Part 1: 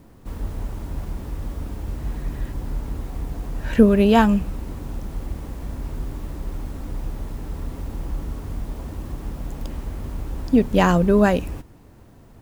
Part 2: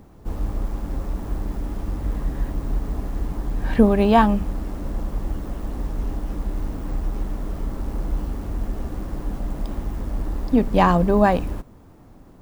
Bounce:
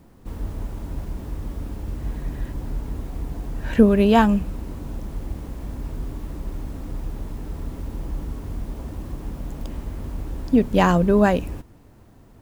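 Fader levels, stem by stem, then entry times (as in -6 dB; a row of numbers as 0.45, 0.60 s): -2.5, -13.0 dB; 0.00, 0.00 s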